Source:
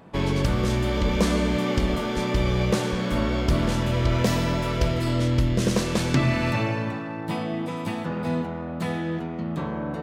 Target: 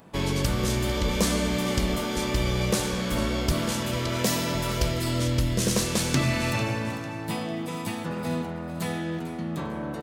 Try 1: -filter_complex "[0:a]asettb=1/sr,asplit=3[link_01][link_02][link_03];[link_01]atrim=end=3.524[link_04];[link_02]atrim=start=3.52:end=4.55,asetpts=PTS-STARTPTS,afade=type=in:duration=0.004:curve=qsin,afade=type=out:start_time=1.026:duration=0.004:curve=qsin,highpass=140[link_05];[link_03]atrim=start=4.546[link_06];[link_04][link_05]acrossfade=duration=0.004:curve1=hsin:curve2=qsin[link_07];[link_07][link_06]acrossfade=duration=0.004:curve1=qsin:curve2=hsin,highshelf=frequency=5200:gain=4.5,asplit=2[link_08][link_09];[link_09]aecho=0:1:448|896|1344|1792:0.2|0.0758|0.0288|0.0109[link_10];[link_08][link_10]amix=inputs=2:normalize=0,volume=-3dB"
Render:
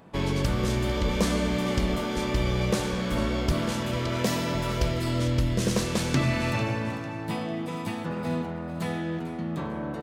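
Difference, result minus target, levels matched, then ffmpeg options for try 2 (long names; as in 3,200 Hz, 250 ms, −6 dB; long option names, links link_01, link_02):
8,000 Hz band −6.0 dB
-filter_complex "[0:a]asettb=1/sr,asplit=3[link_01][link_02][link_03];[link_01]atrim=end=3.524[link_04];[link_02]atrim=start=3.52:end=4.55,asetpts=PTS-STARTPTS,afade=type=in:duration=0.004:curve=qsin,afade=type=out:start_time=1.026:duration=0.004:curve=qsin,highpass=140[link_05];[link_03]atrim=start=4.546[link_06];[link_04][link_05]acrossfade=duration=0.004:curve1=hsin:curve2=qsin[link_07];[link_07][link_06]acrossfade=duration=0.004:curve1=qsin:curve2=hsin,highshelf=frequency=5200:gain=14.5,asplit=2[link_08][link_09];[link_09]aecho=0:1:448|896|1344|1792:0.2|0.0758|0.0288|0.0109[link_10];[link_08][link_10]amix=inputs=2:normalize=0,volume=-3dB"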